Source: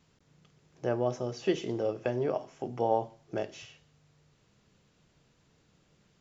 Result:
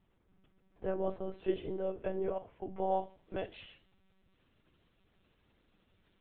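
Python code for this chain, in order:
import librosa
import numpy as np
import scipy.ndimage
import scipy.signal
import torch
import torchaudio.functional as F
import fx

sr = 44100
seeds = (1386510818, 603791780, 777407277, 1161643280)

y = fx.lpc_monotone(x, sr, seeds[0], pitch_hz=190.0, order=16)
y = fx.high_shelf(y, sr, hz=2400.0, db=fx.steps((0.0, -8.5), (2.9, 4.0)))
y = F.gain(torch.from_numpy(y), -4.5).numpy()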